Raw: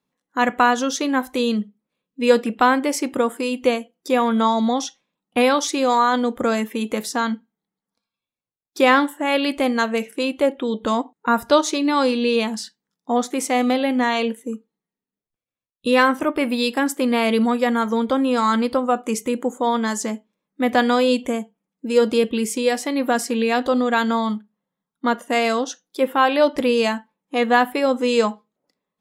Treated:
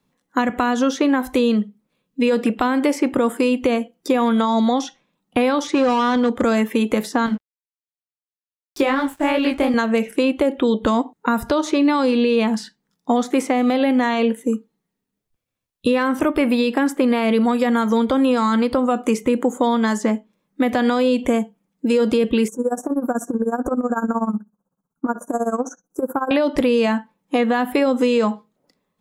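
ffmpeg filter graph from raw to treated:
-filter_complex "[0:a]asettb=1/sr,asplit=3[a][b][c];[a]atrim=end=5.674[d];[b]atrim=start=5.67:end=6.42,asetpts=PTS-STARTPTS,afade=t=in:d=0.004:c=qsin,afade=t=out:st=0.746:d=0.004:c=qsin,volume=17dB,asoftclip=hard,volume=-17dB,highpass=100,lowpass=7.5k[e];[c]atrim=start=6.416[f];[d][e]acrossfade=d=0.004:c1=hsin:c2=qsin[g];[g][f]acrossfade=d=0.004:c1=qsin:c2=hsin,asettb=1/sr,asplit=3[h][i][j];[h]atrim=end=7.264[k];[i]atrim=start=7.26:end=9.74,asetpts=PTS-STARTPTS,afade=t=in:d=0.004:c=qsin,afade=t=out:st=2.476:d=0.004:c=qsin,flanger=delay=15:depth=6.9:speed=2.8,aeval=exprs='sgn(val(0))*max(abs(val(0))-0.00447,0)':c=same[l];[j]atrim=start=9.736[m];[k][l]acrossfade=d=0.004:c1=hsin:c2=qsin[n];[n][m]acrossfade=d=0.004:c1=qsin:c2=hsin,asettb=1/sr,asplit=3[o][p][q];[o]atrim=end=22.484[r];[p]atrim=start=22.48:end=26.31,asetpts=PTS-STARTPTS,afade=t=in:d=0.004:c=qsin,afade=t=out:st=3.826:d=0.004:c=qsin,asuperstop=centerf=3100:order=20:qfactor=0.72,acompressor=threshold=-23dB:ratio=4:attack=3.2:release=140:knee=1:detection=peak,tremolo=f=16:d=0.86[s];[q]atrim=start=26.306[t];[r][s]acrossfade=d=0.004:c1=hsin:c2=qsin[u];[u][t]acrossfade=d=0.004:c1=qsin:c2=hsin,lowshelf=f=140:g=10,alimiter=limit=-12dB:level=0:latency=1:release=90,acrossover=split=370|2600[v][w][x];[v]acompressor=threshold=-27dB:ratio=4[y];[w]acompressor=threshold=-26dB:ratio=4[z];[x]acompressor=threshold=-44dB:ratio=4[aa];[y][z][aa]amix=inputs=3:normalize=0,volume=7.5dB"

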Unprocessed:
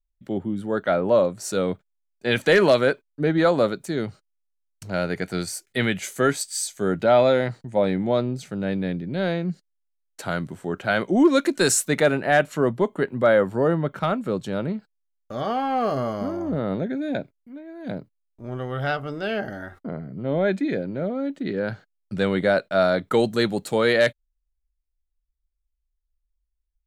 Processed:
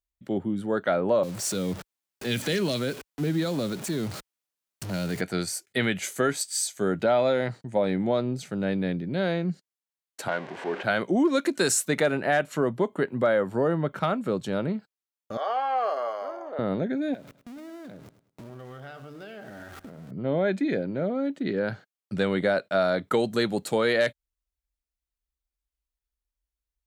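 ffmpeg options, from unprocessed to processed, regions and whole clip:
-filter_complex "[0:a]asettb=1/sr,asplit=3[a][b][c];[a]atrim=end=1.234[d];[b]atrim=start=1.23:end=5.21,asetpts=PTS-STARTPTS,afade=t=in:d=0.004:c=qsin,afade=t=out:st=3.976:d=0.004:c=qsin,aeval=exprs='val(0)+0.5*0.0251*sgn(val(0))':c=same,acrossover=split=290|3000[e][f][g];[f]acompressor=threshold=-35dB:ratio=4:attack=3.2:release=140:knee=2.83:detection=peak[h];[e][h][g]amix=inputs=3:normalize=0,acrusher=bits=7:mix=0:aa=0.5[i];[c]atrim=start=5.206[j];[d][i]acrossfade=d=0.004:c1=hsin:c2=qsin[k];[k][j]acrossfade=d=0.004:c1=qsin:c2=hsin,asettb=1/sr,asplit=3[l][m][n];[l]atrim=end=10.284[o];[m]atrim=start=10.28:end=10.83,asetpts=PTS-STARTPTS,afade=t=in:d=0.004:c=qsin,afade=t=out:st=0.546:d=0.004:c=qsin,aeval=exprs='val(0)+0.5*0.0422*sgn(val(0))':c=same,highpass=400,lowpass=2.4k,bandreject=f=1.3k:w=6.3[p];[n]atrim=start=10.826[q];[o][p]acrossfade=d=0.004:c1=hsin:c2=qsin[r];[r][q]acrossfade=d=0.004:c1=qsin:c2=hsin,asettb=1/sr,asplit=3[s][t][u];[s]atrim=end=15.374[v];[t]atrim=start=15.37:end=16.59,asetpts=PTS-STARTPTS,afade=t=in:d=0.004:c=qsin,afade=t=out:st=1.216:d=0.004:c=qsin,highpass=f=540:w=0.5412,highpass=f=540:w=1.3066,highshelf=f=4.2k:g=-11.5[w];[u]atrim=start=16.586[x];[v][w]acrossfade=d=0.004:c1=hsin:c2=qsin[y];[y][x]acrossfade=d=0.004:c1=qsin:c2=hsin,asettb=1/sr,asplit=3[z][aa][ab];[z]atrim=end=17.144[ac];[aa]atrim=start=17.14:end=20.11,asetpts=PTS-STARTPTS,afade=t=in:d=0.004:c=qsin,afade=t=out:st=2.966:d=0.004:c=qsin,aeval=exprs='val(0)+0.5*0.0141*sgn(val(0))':c=same,acompressor=threshold=-39dB:ratio=10:attack=3.2:release=140:knee=1:detection=peak,aecho=1:1:104|208|312:0.2|0.0619|0.0192,atrim=end_sample=130977[ad];[ab]atrim=start=20.106[ae];[ac][ad]acrossfade=d=0.004:c1=hsin:c2=qsin[af];[af][ae]acrossfade=d=0.004:c1=qsin:c2=hsin,highpass=43,lowshelf=f=81:g=-6.5,acompressor=threshold=-21dB:ratio=2.5"

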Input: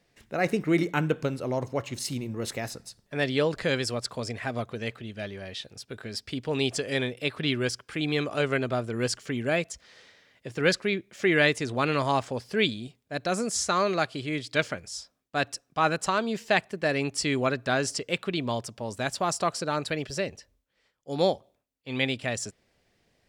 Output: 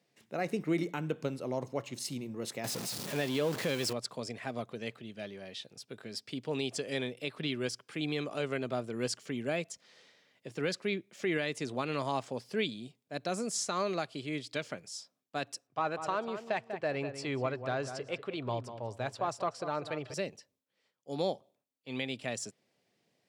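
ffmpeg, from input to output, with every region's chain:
-filter_complex "[0:a]asettb=1/sr,asplit=3[a][b][c];[a]atrim=end=2.644[d];[b]atrim=start=2.64:end=3.93,asetpts=PTS-STARTPTS,afade=t=in:d=0.004:c=qsin,afade=t=out:st=1.286:d=0.004:c=qsin,aeval=exprs='val(0)+0.5*0.0422*sgn(val(0))':c=same,acrusher=bits=7:mix=0:aa=0.5[e];[c]atrim=start=3.926[f];[d][e]acrossfade=d=0.004:c1=hsin:c2=qsin[g];[g][f]acrossfade=d=0.004:c1=qsin:c2=hsin,asettb=1/sr,asplit=3[h][i][j];[h]atrim=end=15.674[k];[i]atrim=start=15.67:end=20.14,asetpts=PTS-STARTPTS,afade=t=in:d=0.004:c=qsin,afade=t=out:st=4.466:d=0.004:c=qsin,lowshelf=f=140:t=q:w=3:g=7.5,asplit=2[l][m];[m]highpass=f=720:p=1,volume=10dB,asoftclip=type=tanh:threshold=-7.5dB[n];[l][n]amix=inputs=2:normalize=0,lowpass=f=1k:p=1,volume=-6dB,asplit=2[o][p];[p]adelay=194,lowpass=f=2.2k:p=1,volume=-10dB,asplit=2[q][r];[r]adelay=194,lowpass=f=2.2k:p=1,volume=0.25,asplit=2[s][t];[t]adelay=194,lowpass=f=2.2k:p=1,volume=0.25[u];[o][q][s][u]amix=inputs=4:normalize=0,atrim=end_sample=197127[v];[j]atrim=start=20.136[w];[k][v]acrossfade=d=0.004:c1=hsin:c2=qsin[x];[x][w]acrossfade=d=0.004:c1=qsin:c2=hsin,highpass=f=130:w=0.5412,highpass=f=130:w=1.3066,equalizer=f=1.6k:w=1.8:g=-4,alimiter=limit=-15.5dB:level=0:latency=1:release=154,volume=-5.5dB"

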